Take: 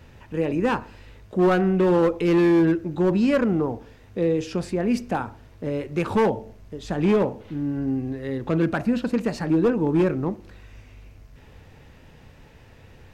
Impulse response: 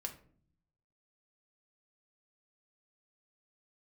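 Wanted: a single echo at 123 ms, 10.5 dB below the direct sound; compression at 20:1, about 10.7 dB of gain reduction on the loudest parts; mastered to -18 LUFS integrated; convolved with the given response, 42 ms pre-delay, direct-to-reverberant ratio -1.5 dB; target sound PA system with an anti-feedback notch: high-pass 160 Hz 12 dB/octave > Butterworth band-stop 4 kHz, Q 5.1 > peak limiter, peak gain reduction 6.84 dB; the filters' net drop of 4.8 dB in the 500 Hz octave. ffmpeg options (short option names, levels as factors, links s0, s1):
-filter_complex "[0:a]equalizer=f=500:t=o:g=-6.5,acompressor=threshold=0.0398:ratio=20,aecho=1:1:123:0.299,asplit=2[s0][s1];[1:a]atrim=start_sample=2205,adelay=42[s2];[s1][s2]afir=irnorm=-1:irlink=0,volume=1.41[s3];[s0][s3]amix=inputs=2:normalize=0,highpass=160,asuperstop=centerf=4000:order=8:qfactor=5.1,volume=5.31,alimiter=limit=0.376:level=0:latency=1"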